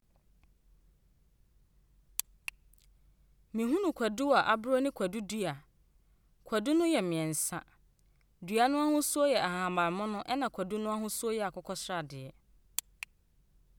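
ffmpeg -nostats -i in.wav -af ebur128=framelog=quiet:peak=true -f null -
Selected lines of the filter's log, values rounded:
Integrated loudness:
  I:         -31.9 LUFS
  Threshold: -43.3 LUFS
Loudness range:
  LRA:         7.7 LU
  Threshold: -53.2 LUFS
  LRA low:   -38.8 LUFS
  LRA high:  -31.1 LUFS
True peak:
  Peak:      -10.5 dBFS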